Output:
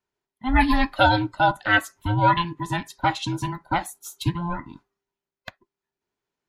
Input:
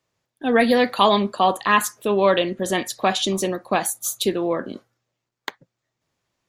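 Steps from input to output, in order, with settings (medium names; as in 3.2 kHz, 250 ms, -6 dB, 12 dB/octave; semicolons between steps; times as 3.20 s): every band turned upside down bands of 500 Hz; treble shelf 4.7 kHz -6.5 dB; upward expansion 1.5:1, over -31 dBFS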